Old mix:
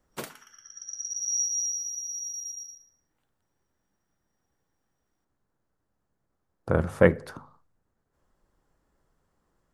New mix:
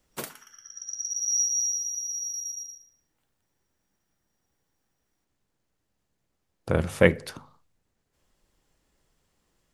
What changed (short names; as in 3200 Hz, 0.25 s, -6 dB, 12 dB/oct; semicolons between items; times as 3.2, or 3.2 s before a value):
speech: add resonant high shelf 1900 Hz +8.5 dB, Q 1.5; background: add high shelf 7600 Hz +7.5 dB